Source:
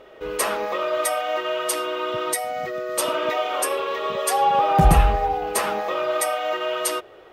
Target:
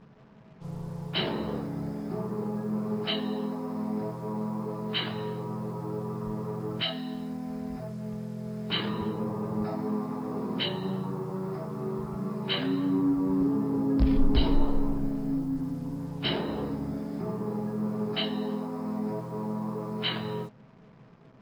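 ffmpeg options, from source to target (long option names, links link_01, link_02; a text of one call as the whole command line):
ffmpeg -i in.wav -af "asetrate=15082,aresample=44100,acrusher=bits=7:mix=0:aa=0.5,volume=-7.5dB" out.wav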